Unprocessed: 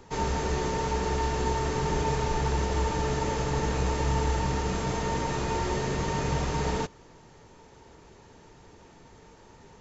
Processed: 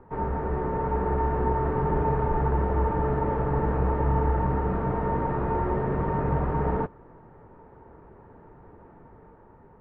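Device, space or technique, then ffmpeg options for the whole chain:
action camera in a waterproof case: -af "lowpass=f=1500:w=0.5412,lowpass=f=1500:w=1.3066,dynaudnorm=f=220:g=7:m=1.41" -ar 44100 -c:a aac -b:a 64k

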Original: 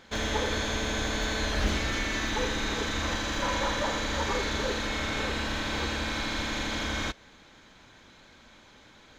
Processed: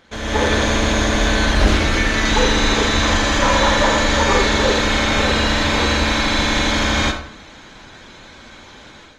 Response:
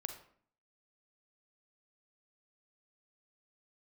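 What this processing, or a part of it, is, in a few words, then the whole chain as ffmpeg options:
speakerphone in a meeting room: -filter_complex "[0:a]lowpass=f=11000:w=0.5412,lowpass=f=11000:w=1.3066[s0];[1:a]atrim=start_sample=2205[s1];[s0][s1]afir=irnorm=-1:irlink=0,dynaudnorm=f=220:g=3:m=3.35,volume=1.78" -ar 48000 -c:a libopus -b:a 32k

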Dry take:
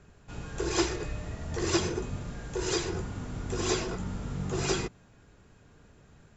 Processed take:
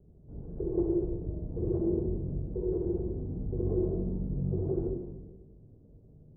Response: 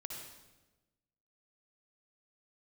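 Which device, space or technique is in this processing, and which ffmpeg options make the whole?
next room: -filter_complex "[0:a]lowpass=f=510:w=0.5412,lowpass=f=510:w=1.3066[s0];[1:a]atrim=start_sample=2205[s1];[s0][s1]afir=irnorm=-1:irlink=0,volume=1.41"

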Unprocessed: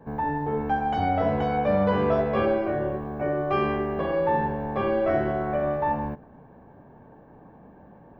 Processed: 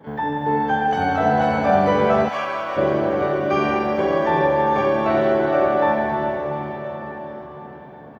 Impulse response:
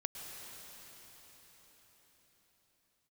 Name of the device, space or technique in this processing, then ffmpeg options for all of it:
shimmer-style reverb: -filter_complex "[0:a]highpass=110,asplit=2[s0][s1];[s1]asetrate=88200,aresample=44100,atempo=0.5,volume=0.251[s2];[s0][s2]amix=inputs=2:normalize=0[s3];[1:a]atrim=start_sample=2205[s4];[s3][s4]afir=irnorm=-1:irlink=0,asplit=3[s5][s6][s7];[s5]afade=t=out:st=2.28:d=0.02[s8];[s6]highpass=1000,afade=t=in:st=2.28:d=0.02,afade=t=out:st=2.76:d=0.02[s9];[s7]afade=t=in:st=2.76:d=0.02[s10];[s8][s9][s10]amix=inputs=3:normalize=0,aecho=1:1:1069:0.1,volume=1.88"

